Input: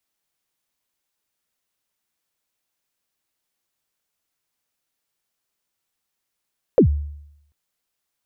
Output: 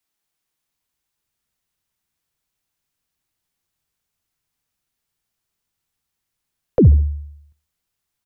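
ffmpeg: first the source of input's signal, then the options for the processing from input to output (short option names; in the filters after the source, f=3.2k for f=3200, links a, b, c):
-f lavfi -i "aevalsrc='0.447*pow(10,-3*t/0.79)*sin(2*PI*(580*0.095/log(73/580)*(exp(log(73/580)*min(t,0.095)/0.095)-1)+73*max(t-0.095,0)))':d=0.74:s=44100"
-filter_complex "[0:a]equalizer=f=560:t=o:w=0.2:g=-5,aecho=1:1:67|134|201:0.1|0.038|0.0144,acrossover=split=160|400|1000[a][b][c][d];[a]dynaudnorm=f=560:g=3:m=10.5dB[e];[e][b][c][d]amix=inputs=4:normalize=0"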